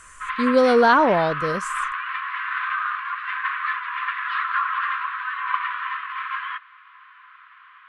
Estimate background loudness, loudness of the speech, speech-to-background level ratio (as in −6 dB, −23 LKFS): −26.5 LKFS, −18.5 LKFS, 8.0 dB